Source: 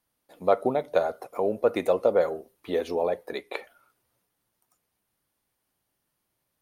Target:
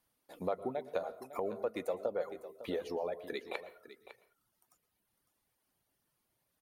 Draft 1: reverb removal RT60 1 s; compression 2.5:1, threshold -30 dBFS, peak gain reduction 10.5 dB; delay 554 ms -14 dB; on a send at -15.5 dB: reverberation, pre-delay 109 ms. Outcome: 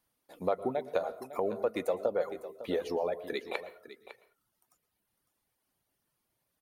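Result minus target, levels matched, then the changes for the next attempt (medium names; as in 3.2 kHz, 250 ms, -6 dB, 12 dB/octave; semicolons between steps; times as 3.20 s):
compression: peak gain reduction -5 dB
change: compression 2.5:1, threshold -38.5 dBFS, peak gain reduction 15.5 dB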